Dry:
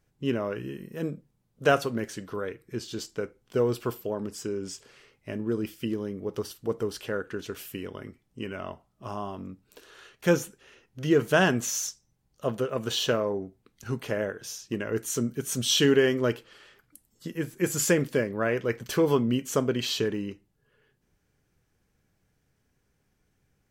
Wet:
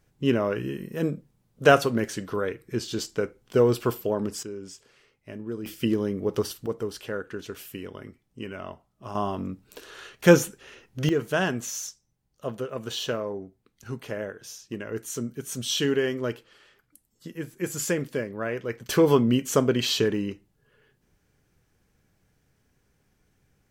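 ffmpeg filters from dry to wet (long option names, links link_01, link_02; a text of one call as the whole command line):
ffmpeg -i in.wav -af "asetnsamples=nb_out_samples=441:pad=0,asendcmd='4.43 volume volume -5dB;5.66 volume volume 6dB;6.66 volume volume -1dB;9.15 volume volume 7dB;11.09 volume volume -3.5dB;18.89 volume volume 4dB',volume=5dB" out.wav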